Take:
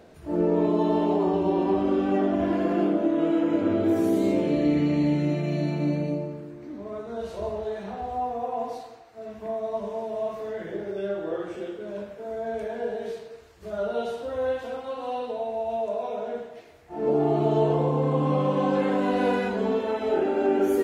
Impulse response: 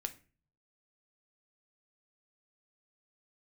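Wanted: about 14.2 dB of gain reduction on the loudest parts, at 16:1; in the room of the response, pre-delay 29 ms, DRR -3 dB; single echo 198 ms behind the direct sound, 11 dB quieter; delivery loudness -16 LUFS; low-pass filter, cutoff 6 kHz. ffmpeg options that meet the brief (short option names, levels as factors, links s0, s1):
-filter_complex "[0:a]lowpass=6000,acompressor=threshold=0.0224:ratio=16,aecho=1:1:198:0.282,asplit=2[s0][s1];[1:a]atrim=start_sample=2205,adelay=29[s2];[s1][s2]afir=irnorm=-1:irlink=0,volume=1.58[s3];[s0][s3]amix=inputs=2:normalize=0,volume=7.08"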